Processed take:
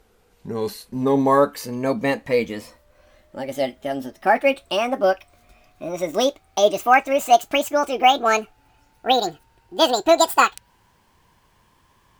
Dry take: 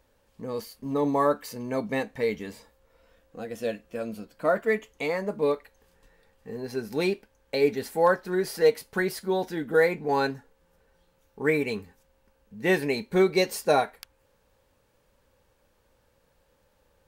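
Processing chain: speed glide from 85% -> 195%; gain +7 dB

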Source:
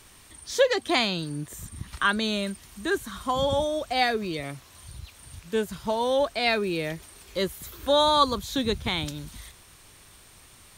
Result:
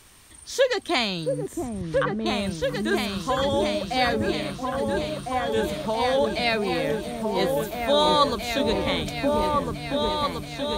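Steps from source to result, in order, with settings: 1.47–2.26 treble ducked by the level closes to 340 Hz, closed at -18.5 dBFS; repeats that get brighter 0.677 s, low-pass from 400 Hz, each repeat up 2 oct, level 0 dB

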